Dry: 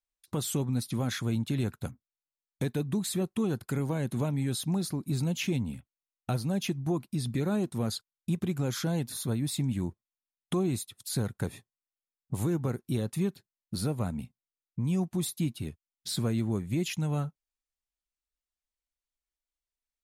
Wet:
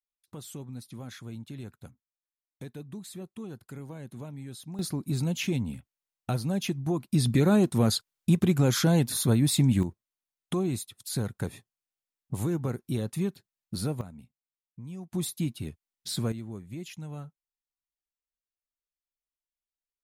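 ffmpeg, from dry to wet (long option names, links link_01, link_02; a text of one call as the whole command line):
ffmpeg -i in.wav -af "asetnsamples=nb_out_samples=441:pad=0,asendcmd='4.79 volume volume 1dB;7.12 volume volume 7.5dB;9.83 volume volume 0dB;14.01 volume volume -12dB;15.12 volume volume 0dB;16.32 volume volume -9.5dB',volume=-11dB" out.wav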